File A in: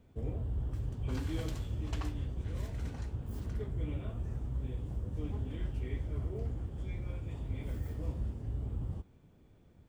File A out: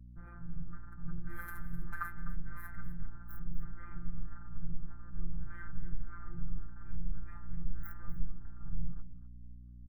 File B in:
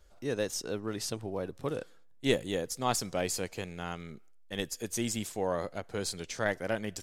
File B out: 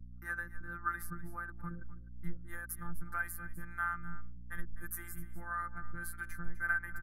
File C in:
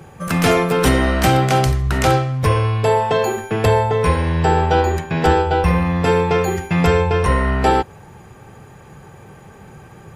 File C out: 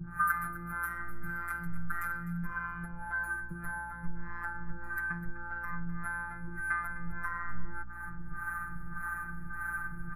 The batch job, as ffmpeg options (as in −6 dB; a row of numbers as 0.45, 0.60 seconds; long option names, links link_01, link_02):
-filter_complex "[0:a]aecho=1:1:2.5:0.76,alimiter=limit=-8.5dB:level=0:latency=1:release=37,acrossover=split=410[link_01][link_02];[link_01]aeval=exprs='val(0)*(1-1/2+1/2*cos(2*PI*1.7*n/s))':channel_layout=same[link_03];[link_02]aeval=exprs='val(0)*(1-1/2-1/2*cos(2*PI*1.7*n/s))':channel_layout=same[link_04];[link_03][link_04]amix=inputs=2:normalize=0,afftfilt=real='hypot(re,im)*cos(PI*b)':imag='0':win_size=1024:overlap=0.75,acompressor=threshold=-39dB:ratio=16,bandreject=frequency=45.85:width_type=h:width=4,bandreject=frequency=91.7:width_type=h:width=4,bandreject=frequency=137.55:width_type=h:width=4,asubboost=boost=3.5:cutoff=78,acontrast=70,anlmdn=0.00158,aeval=exprs='val(0)+0.00282*(sin(2*PI*60*n/s)+sin(2*PI*2*60*n/s)/2+sin(2*PI*3*60*n/s)/3+sin(2*PI*4*60*n/s)/4+sin(2*PI*5*60*n/s)/5)':channel_layout=same,firequalizer=gain_entry='entry(220,0);entry(430,-28);entry(1400,14);entry(2800,-27);entry(7200,-22);entry(11000,5)':delay=0.05:min_phase=1,asplit=2[link_05][link_06];[link_06]aecho=0:1:253:0.178[link_07];[link_05][link_07]amix=inputs=2:normalize=0,volume=1dB"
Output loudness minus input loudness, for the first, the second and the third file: −7.5, −7.0, −20.5 LU